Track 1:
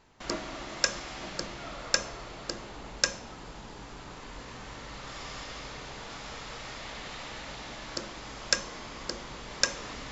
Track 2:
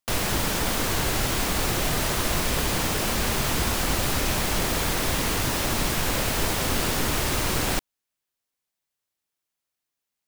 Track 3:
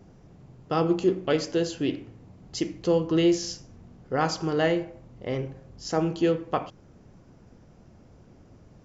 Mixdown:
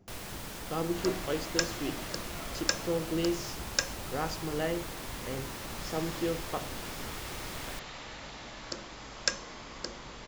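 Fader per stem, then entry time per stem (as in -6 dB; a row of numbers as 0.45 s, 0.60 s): -3.0 dB, -16.5 dB, -9.0 dB; 0.75 s, 0.00 s, 0.00 s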